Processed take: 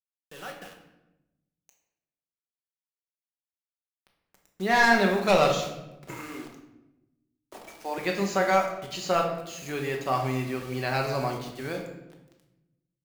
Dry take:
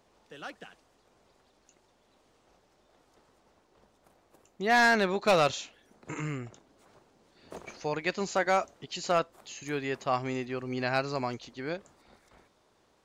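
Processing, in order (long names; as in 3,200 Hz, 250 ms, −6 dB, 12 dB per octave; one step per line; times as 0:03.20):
0:06.11–0:07.98: Chebyshev high-pass with heavy ripple 220 Hz, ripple 6 dB
bit reduction 8 bits
rectangular room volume 360 cubic metres, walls mixed, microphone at 1.1 metres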